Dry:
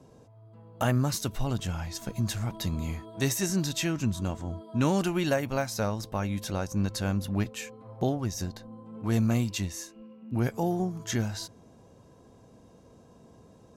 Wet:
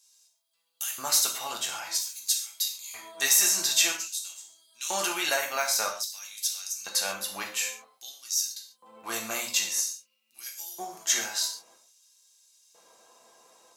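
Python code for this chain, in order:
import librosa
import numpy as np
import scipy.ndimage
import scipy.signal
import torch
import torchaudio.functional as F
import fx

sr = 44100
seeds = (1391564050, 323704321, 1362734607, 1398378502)

y = fx.high_shelf(x, sr, hz=3500.0, db=11.5)
y = fx.filter_lfo_highpass(y, sr, shape='square', hz=0.51, low_hz=820.0, high_hz=4400.0, q=0.96)
y = fx.rev_gated(y, sr, seeds[0], gate_ms=170, shape='falling', drr_db=-0.5)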